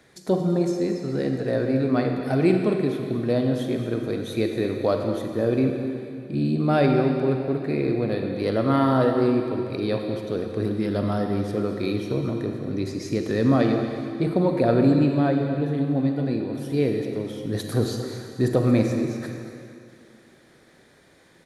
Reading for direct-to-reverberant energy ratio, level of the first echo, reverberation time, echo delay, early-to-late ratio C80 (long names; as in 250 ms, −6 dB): 3.5 dB, −13.5 dB, 2.6 s, 228 ms, 4.5 dB